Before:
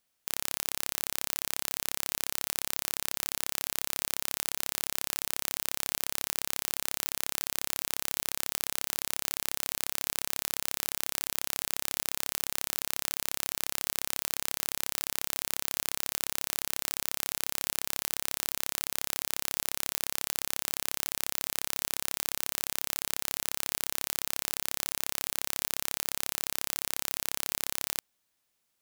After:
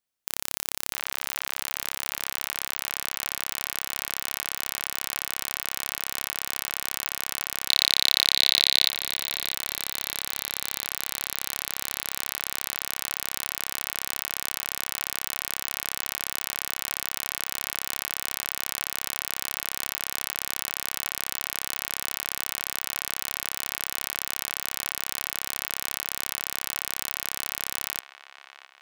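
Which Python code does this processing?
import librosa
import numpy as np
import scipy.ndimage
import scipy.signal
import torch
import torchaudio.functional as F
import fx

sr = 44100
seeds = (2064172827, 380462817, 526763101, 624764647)

y = fx.graphic_eq_31(x, sr, hz=(500, 2000, 4000), db=(-8, -9, 11), at=(7.69, 8.89))
y = fx.leveller(y, sr, passes=5)
y = fx.echo_wet_bandpass(y, sr, ms=659, feedback_pct=47, hz=1500.0, wet_db=-9)
y = y * 10.0 ** (2.0 / 20.0)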